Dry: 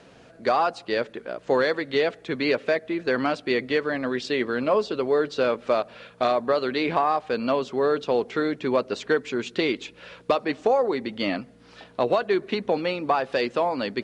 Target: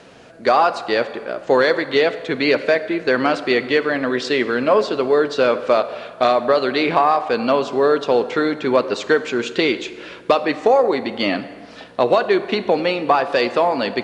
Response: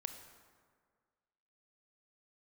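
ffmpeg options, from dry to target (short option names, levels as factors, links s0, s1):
-filter_complex "[0:a]asplit=2[s0][s1];[1:a]atrim=start_sample=2205,lowshelf=f=150:g=-12[s2];[s1][s2]afir=irnorm=-1:irlink=0,volume=1.78[s3];[s0][s3]amix=inputs=2:normalize=0"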